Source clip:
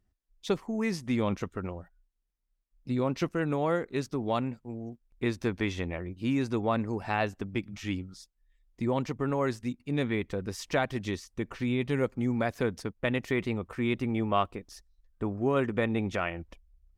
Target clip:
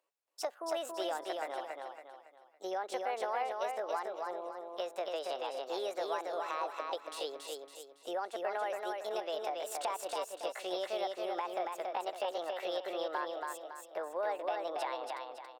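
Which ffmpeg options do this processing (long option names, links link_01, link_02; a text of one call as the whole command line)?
ffmpeg -i in.wav -filter_complex "[0:a]highpass=frequency=380:width=0.5412,highpass=frequency=380:width=1.3066,acrossover=split=770[link_01][link_02];[link_01]acontrast=64[link_03];[link_02]alimiter=level_in=3.5dB:limit=-24dB:level=0:latency=1:release=351,volume=-3.5dB[link_04];[link_03][link_04]amix=inputs=2:normalize=0,acompressor=threshold=-37dB:ratio=3,asetrate=60591,aresample=44100,atempo=0.727827,aecho=1:1:304|608|912|1216|1520:0.668|0.261|0.102|0.0396|0.0155,asetrate=48000,aresample=44100" out.wav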